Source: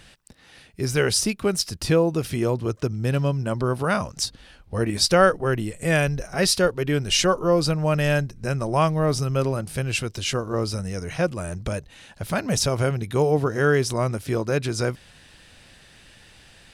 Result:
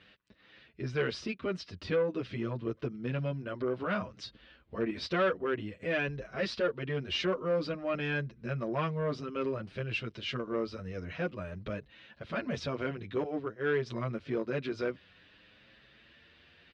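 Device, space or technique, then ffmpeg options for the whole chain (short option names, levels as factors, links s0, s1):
barber-pole flanger into a guitar amplifier: -filter_complex "[0:a]asettb=1/sr,asplit=3[s0][s1][s2];[s0]atrim=end=13.234[s3];[s1]atrim=start=13.23:end=13.86,asetpts=PTS-STARTPTS,afade=t=in:d=0.004:c=qsin,afade=t=out:st=0.626:d=0.004:c=qsin,agate=range=0.0224:threshold=0.178:ratio=3:detection=peak[s4];[s2]atrim=start=13.856[s5];[s3][s4]acrossfade=d=0.004:c1=hsin:c2=qsin[s6];[s6][s5]acrossfade=d=0.004:c1=qsin:c2=hsin,asplit=2[s7][s8];[s8]adelay=7.8,afreqshift=0.53[s9];[s7][s9]amix=inputs=2:normalize=1,asoftclip=type=tanh:threshold=0.133,highpass=83,equalizer=f=110:t=q:w=4:g=-7,equalizer=f=160:t=q:w=4:g=-5,equalizer=f=810:t=q:w=4:g=-9,lowpass=f=3700:w=0.5412,lowpass=f=3700:w=1.3066,volume=0.631"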